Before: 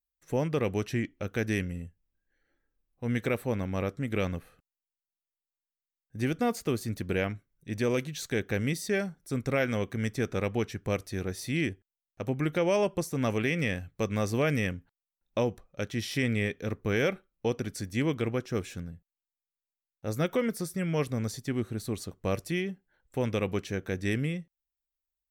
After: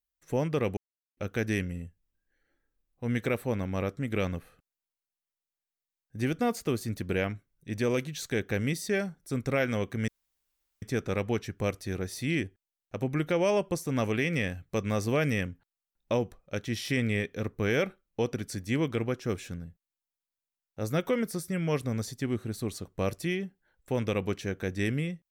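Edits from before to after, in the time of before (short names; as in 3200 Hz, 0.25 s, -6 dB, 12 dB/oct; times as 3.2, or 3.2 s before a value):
0.77–1.17 mute
10.08 insert room tone 0.74 s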